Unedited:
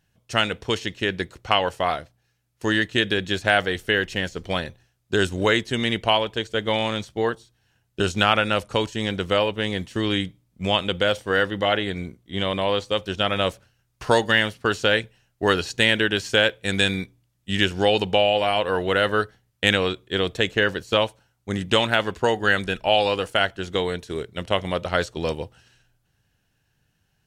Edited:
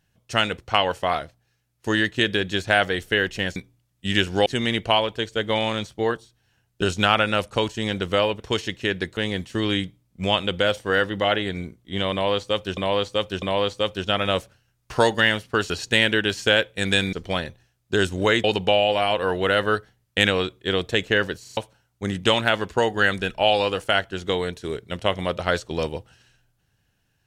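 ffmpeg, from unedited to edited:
-filter_complex "[0:a]asplit=15[s0][s1][s2][s3][s4][s5][s6][s7][s8][s9][s10][s11][s12][s13][s14];[s0]atrim=end=0.582[s15];[s1]atrim=start=1.348:end=4.332[s16];[s2]atrim=start=16.998:end=17.902[s17];[s3]atrim=start=5.638:end=9.582[s18];[s4]atrim=start=0.578:end=1.352[s19];[s5]atrim=start=9.578:end=13.182[s20];[s6]atrim=start=12.528:end=13.182[s21];[s7]atrim=start=12.528:end=14.812[s22];[s8]atrim=start=15.568:end=17.002[s23];[s9]atrim=start=4.328:end=5.642[s24];[s10]atrim=start=17.898:end=20.912[s25];[s11]atrim=start=20.868:end=20.912[s26];[s12]atrim=start=20.868:end=20.912[s27];[s13]atrim=start=20.868:end=20.912[s28];[s14]atrim=start=21.028[s29];[s15][s16]acrossfade=d=0.004:c1=hsin:c2=hsin[s30];[s30][s17]acrossfade=d=0.004:c1=hsin:c2=hsin[s31];[s31][s18]acrossfade=d=0.004:c1=hsin:c2=hsin[s32];[s32][s19]acrossfade=d=0.004:c1=hsin:c2=hsin[s33];[s33][s20]acrossfade=d=0.004:c1=hsin:c2=hsin[s34];[s34][s21]acrossfade=d=0.004:c1=hsin:c2=hsin[s35];[s35][s22]acrossfade=d=0.004:c1=hsin:c2=hsin[s36];[s36][s23]acrossfade=d=0.004:c1=hsin:c2=hsin[s37];[s37][s24]acrossfade=d=0.004:c1=hsin:c2=hsin[s38];[s38][s25]acrossfade=d=0.004:c1=hsin:c2=hsin[s39];[s39][s26]acrossfade=d=0.004:c1=hsin:c2=hsin[s40];[s40][s27]acrossfade=d=0.004:c1=hsin:c2=hsin[s41];[s41][s28]acrossfade=d=0.004:c1=hsin:c2=hsin[s42];[s42][s29]acrossfade=d=0.004:c1=hsin:c2=hsin"

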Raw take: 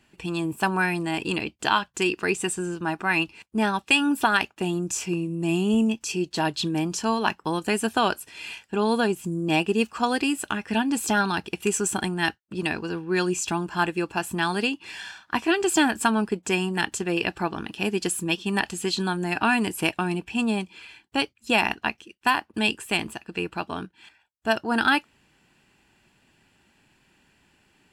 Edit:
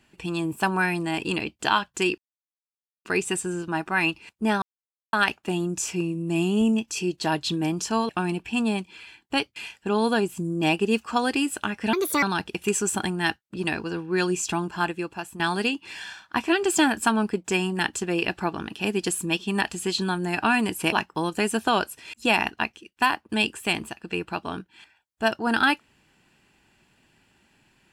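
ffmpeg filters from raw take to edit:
-filter_complex "[0:a]asplit=11[s0][s1][s2][s3][s4][s5][s6][s7][s8][s9][s10];[s0]atrim=end=2.18,asetpts=PTS-STARTPTS,afade=t=out:st=2.176:d=0.004:c=hsin,apad=pad_dur=0.87[s11];[s1]atrim=start=2.18:end=3.75,asetpts=PTS-STARTPTS,afade=t=in:d=0.004:c=hsin,afade=t=out:st=1.566:d=0.004:c=hsin[s12];[s2]atrim=start=3.75:end=4.26,asetpts=PTS-STARTPTS,volume=0[s13];[s3]atrim=start=4.26:end=7.222,asetpts=PTS-STARTPTS,afade=t=in:d=0.004:c=hsin[s14];[s4]atrim=start=19.908:end=21.382[s15];[s5]atrim=start=8.428:end=10.804[s16];[s6]atrim=start=10.8:end=11.21,asetpts=PTS-STARTPTS,asetrate=61299,aresample=44100[s17];[s7]atrim=start=11.206:end=14.38,asetpts=PTS-STARTPTS,afade=t=out:st=2.414:d=0.76:silence=0.281838[s18];[s8]atrim=start=14.38:end=19.912,asetpts=PTS-STARTPTS,afade=t=in:d=0.004:c=hsin:silence=0.281838[s19];[s9]atrim=start=7.218:end=8.432[s20];[s10]atrim=start=21.378[s21];[s11][s12][s13][s14]concat=n=4:v=0:a=1[s22];[s22][s15]acrossfade=d=0.004:c1=hsin:c2=hsin[s23];[s23][s16]acrossfade=d=0.004:c1=hsin:c2=hsin[s24];[s24][s17]acrossfade=d=0.004:c1=hsin:c2=hsin[s25];[s18][s19]concat=n=2:v=0:a=1[s26];[s25][s26]acrossfade=d=0.004:c1=hsin:c2=hsin[s27];[s27][s20]acrossfade=d=0.004:c1=hsin:c2=hsin[s28];[s28][s21]acrossfade=d=0.004:c1=hsin:c2=hsin"

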